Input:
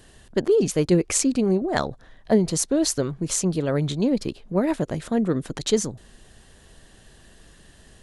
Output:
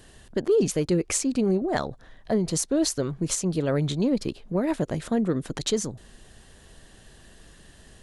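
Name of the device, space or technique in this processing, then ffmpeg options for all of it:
soft clipper into limiter: -af "asoftclip=type=tanh:threshold=-6.5dB,alimiter=limit=-14.5dB:level=0:latency=1:release=271"

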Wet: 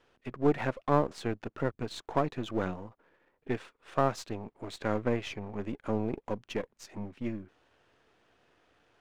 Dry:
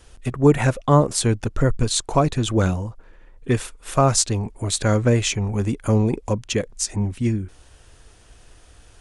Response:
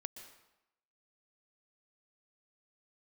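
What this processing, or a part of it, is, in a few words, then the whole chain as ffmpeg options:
crystal radio: -filter_complex "[0:a]highpass=210,lowpass=2.7k,aeval=exprs='if(lt(val(0),0),0.447*val(0),val(0))':c=same,asettb=1/sr,asplit=3[a][b][c];[a]atrim=end=5.164[d];[b]atrim=start=5.16:end=5.61,asetpts=PTS-STARTPTS,afade=t=in:d=0.004:c=qsin,afade=t=out:st=0.446:d=0.004:c=qsin,highshelf=f=7.6k:g=-6[e];[c]atrim=start=5.606[f];[d][e]acrossfade=d=0.004:c1=hsin:c2=qsin[g];[g][f]acrossfade=d=0.004:c1=qsin:c2=hsin,volume=-7.5dB"

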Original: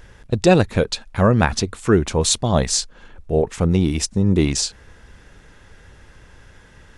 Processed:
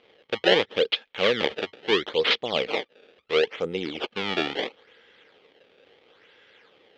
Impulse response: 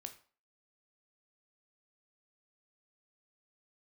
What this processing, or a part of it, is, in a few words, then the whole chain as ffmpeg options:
circuit-bent sampling toy: -af "acrusher=samples=24:mix=1:aa=0.000001:lfo=1:lforange=38.4:lforate=0.74,highpass=470,equalizer=f=470:t=q:w=4:g=7,equalizer=f=670:t=q:w=4:g=-6,equalizer=f=1k:t=q:w=4:g=-8,equalizer=f=1.5k:t=q:w=4:g=-3,equalizer=f=2.2k:t=q:w=4:g=4,equalizer=f=3.2k:t=q:w=4:g=9,lowpass=f=4.2k:w=0.5412,lowpass=f=4.2k:w=1.3066,volume=-3.5dB"

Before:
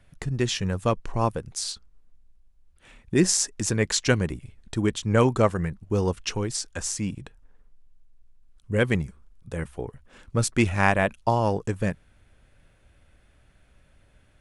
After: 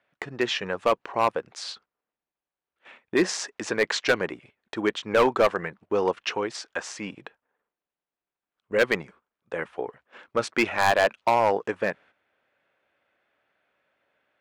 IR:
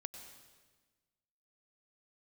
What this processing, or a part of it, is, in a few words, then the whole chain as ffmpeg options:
walkie-talkie: -af "highpass=490,lowpass=2.7k,asoftclip=type=hard:threshold=-20.5dB,agate=range=-11dB:threshold=-57dB:ratio=16:detection=peak,volume=7dB"

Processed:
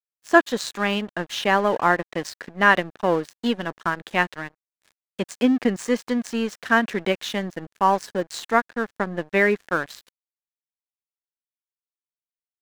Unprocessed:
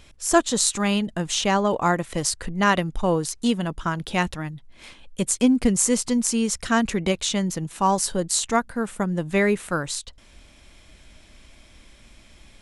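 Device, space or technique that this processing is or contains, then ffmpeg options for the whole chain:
pocket radio on a weak battery: -af "highpass=250,lowpass=3.5k,aeval=exprs='sgn(val(0))*max(abs(val(0))-0.0112,0)':c=same,equalizer=f=1.7k:t=o:w=0.29:g=7,volume=2.5dB"

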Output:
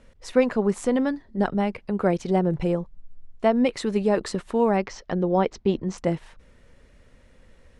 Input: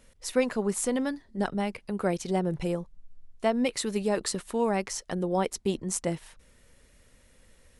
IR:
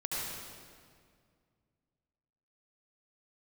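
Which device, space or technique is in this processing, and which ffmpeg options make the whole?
through cloth: -filter_complex "[0:a]asettb=1/sr,asplit=3[a][b][c];[a]atrim=end=4.774[d];[b]atrim=start=4.77:end=5.98,asetpts=PTS-STARTPTS,afade=t=in:d=0.004:c=qsin,afade=t=out:st=1.206:d=0.004:c=qsin,lowpass=f=5.9k:w=0.5412,lowpass=f=5.9k:w=1.3066[e];[c]atrim=start=5.976[f];[d][e]acrossfade=d=0.004:c1=hsin:c2=qsin[g];[g][f]acrossfade=d=0.004:c1=qsin:c2=hsin,lowpass=7.8k,highshelf=f=3.1k:g=-11.5,volume=6dB"

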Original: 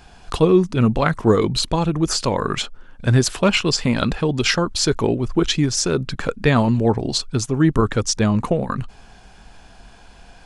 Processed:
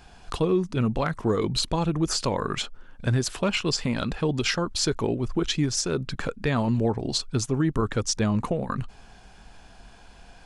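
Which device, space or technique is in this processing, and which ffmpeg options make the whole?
clipper into limiter: -af "asoftclip=type=hard:threshold=-5dB,alimiter=limit=-10.5dB:level=0:latency=1:release=282,volume=-4dB"

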